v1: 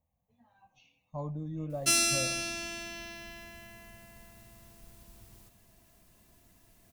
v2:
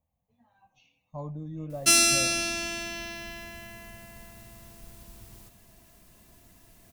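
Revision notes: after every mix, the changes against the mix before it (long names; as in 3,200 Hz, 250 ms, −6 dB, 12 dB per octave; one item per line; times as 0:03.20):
background +6.0 dB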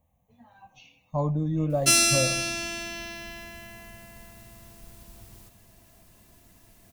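speech +11.0 dB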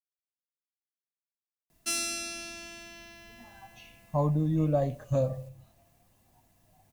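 speech: entry +3.00 s
background −11.5 dB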